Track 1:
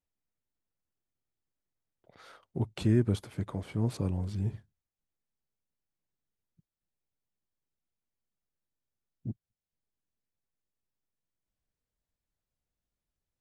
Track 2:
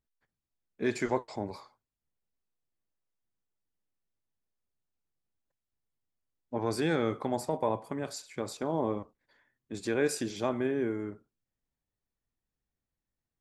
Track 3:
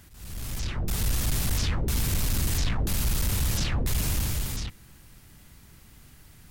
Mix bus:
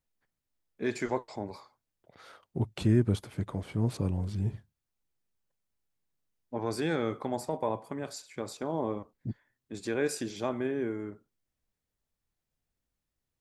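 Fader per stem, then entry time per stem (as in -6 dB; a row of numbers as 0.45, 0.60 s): +1.0 dB, -1.5 dB, off; 0.00 s, 0.00 s, off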